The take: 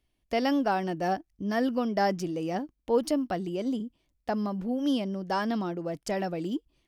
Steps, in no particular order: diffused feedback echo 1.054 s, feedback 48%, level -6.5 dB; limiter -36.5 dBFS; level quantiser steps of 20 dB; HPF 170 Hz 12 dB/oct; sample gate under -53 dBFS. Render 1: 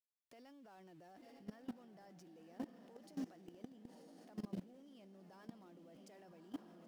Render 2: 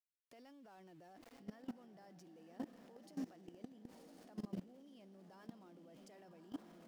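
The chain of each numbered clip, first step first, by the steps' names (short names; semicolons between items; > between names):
HPF > limiter > sample gate > diffused feedback echo > level quantiser; HPF > limiter > diffused feedback echo > sample gate > level quantiser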